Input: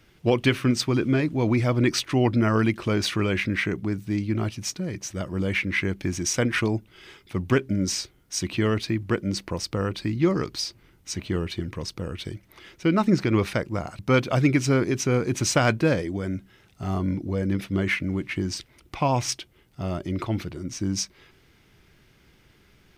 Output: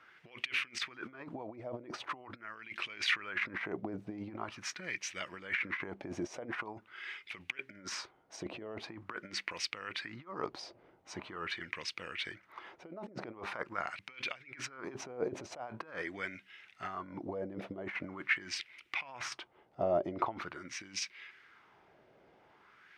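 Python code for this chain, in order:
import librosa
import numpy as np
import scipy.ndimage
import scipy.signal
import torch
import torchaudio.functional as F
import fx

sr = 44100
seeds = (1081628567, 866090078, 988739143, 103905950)

y = fx.over_compress(x, sr, threshold_db=-28.0, ratio=-0.5)
y = fx.wah_lfo(y, sr, hz=0.44, low_hz=620.0, high_hz=2400.0, q=2.6)
y = y * librosa.db_to_amplitude(3.5)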